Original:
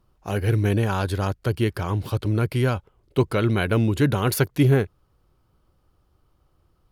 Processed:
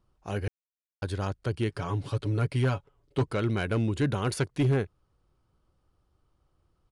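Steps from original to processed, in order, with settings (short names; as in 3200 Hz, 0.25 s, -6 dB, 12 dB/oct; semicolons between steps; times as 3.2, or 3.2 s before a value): 1.69–3.26 comb 7.1 ms, depth 58%; overloaded stage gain 13 dB; downsampling 22050 Hz; 0.48–1.02 mute; gain -6.5 dB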